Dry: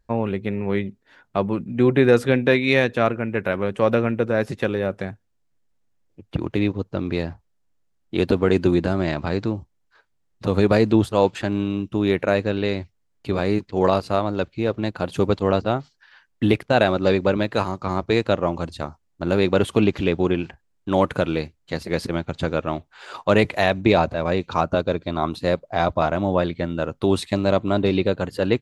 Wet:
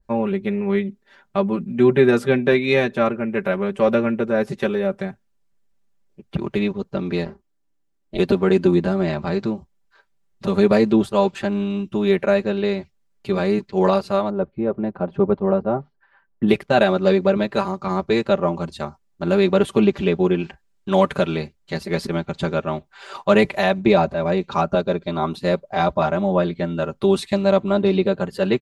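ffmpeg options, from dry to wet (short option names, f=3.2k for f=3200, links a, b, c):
-filter_complex "[0:a]asplit=3[a][b][c];[a]afade=t=out:st=7.23:d=0.02[d];[b]tremolo=f=300:d=0.974,afade=t=in:st=7.23:d=0.02,afade=t=out:st=8.18:d=0.02[e];[c]afade=t=in:st=8.18:d=0.02[f];[d][e][f]amix=inputs=3:normalize=0,asplit=3[g][h][i];[g]afade=t=out:st=14.29:d=0.02[j];[h]lowpass=1.1k,afade=t=in:st=14.29:d=0.02,afade=t=out:st=16.47:d=0.02[k];[i]afade=t=in:st=16.47:d=0.02[l];[j][k][l]amix=inputs=3:normalize=0,asettb=1/sr,asplit=3[m][n][o];[m]atrim=end=20.394[p];[n]atrim=start=20.39:end=21.37,asetpts=PTS-STARTPTS,afade=t=in:d=0.004:c=qsin,afade=t=out:st=0.976:d=0.004:c=qsin,equalizer=f=4.4k:w=0.43:g=3.5[q];[o]atrim=start=21.366[r];[p][q]acrossfade=d=0.004:c1=hsin:c2=qsin[s];[s][r]acrossfade=d=0.004:c1=qsin:c2=hsin,aecho=1:1:5.1:0.86,adynamicequalizer=threshold=0.0316:dfrequency=1500:dqfactor=0.7:tfrequency=1500:tqfactor=0.7:attack=5:release=100:ratio=0.375:range=2:mode=cutabove:tftype=highshelf,volume=-1dB"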